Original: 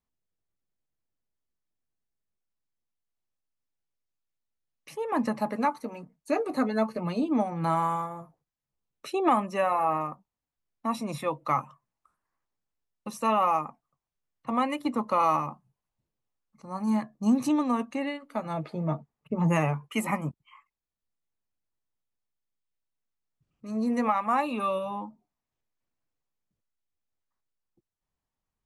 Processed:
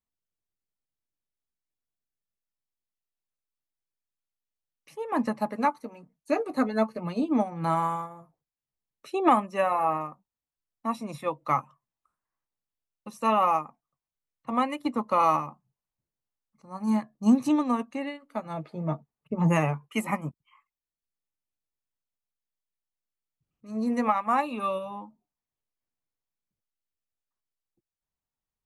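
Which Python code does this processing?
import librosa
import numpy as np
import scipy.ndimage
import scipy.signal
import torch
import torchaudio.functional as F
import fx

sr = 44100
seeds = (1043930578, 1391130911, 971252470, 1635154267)

y = fx.upward_expand(x, sr, threshold_db=-39.0, expansion=1.5)
y = y * librosa.db_to_amplitude(3.5)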